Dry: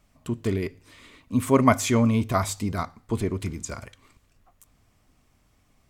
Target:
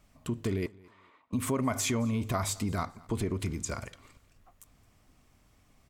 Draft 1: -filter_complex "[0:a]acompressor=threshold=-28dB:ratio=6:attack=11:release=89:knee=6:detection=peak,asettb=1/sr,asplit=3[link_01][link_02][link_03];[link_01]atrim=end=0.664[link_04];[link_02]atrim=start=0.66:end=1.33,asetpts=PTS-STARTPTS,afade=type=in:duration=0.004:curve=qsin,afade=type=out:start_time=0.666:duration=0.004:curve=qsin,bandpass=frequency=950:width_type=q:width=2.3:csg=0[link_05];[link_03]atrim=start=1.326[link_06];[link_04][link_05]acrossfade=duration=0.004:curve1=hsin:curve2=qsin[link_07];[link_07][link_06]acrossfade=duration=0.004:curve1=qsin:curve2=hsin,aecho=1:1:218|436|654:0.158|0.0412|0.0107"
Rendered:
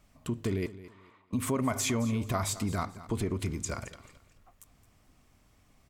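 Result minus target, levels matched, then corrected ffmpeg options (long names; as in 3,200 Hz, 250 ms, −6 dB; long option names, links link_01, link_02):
echo-to-direct +8 dB
-filter_complex "[0:a]acompressor=threshold=-28dB:ratio=6:attack=11:release=89:knee=6:detection=peak,asettb=1/sr,asplit=3[link_01][link_02][link_03];[link_01]atrim=end=0.664[link_04];[link_02]atrim=start=0.66:end=1.33,asetpts=PTS-STARTPTS,afade=type=in:duration=0.004:curve=qsin,afade=type=out:start_time=0.666:duration=0.004:curve=qsin,bandpass=frequency=950:width_type=q:width=2.3:csg=0[link_05];[link_03]atrim=start=1.326[link_06];[link_04][link_05]acrossfade=duration=0.004:curve1=hsin:curve2=qsin[link_07];[link_07][link_06]acrossfade=duration=0.004:curve1=qsin:curve2=hsin,aecho=1:1:218|436:0.0631|0.0164"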